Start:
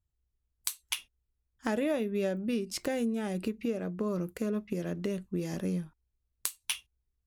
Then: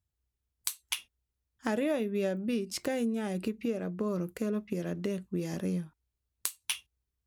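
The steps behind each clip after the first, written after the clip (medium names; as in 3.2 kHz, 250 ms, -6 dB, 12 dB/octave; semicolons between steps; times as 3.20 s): high-pass 57 Hz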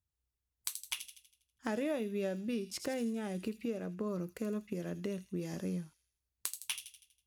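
feedback echo behind a high-pass 81 ms, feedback 49%, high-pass 4.1 kHz, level -6 dB; trim -5 dB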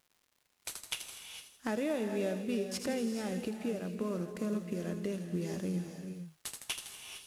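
CVSD coder 64 kbps; crackle 270 per s -57 dBFS; gated-style reverb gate 480 ms rising, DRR 6.5 dB; trim +1.5 dB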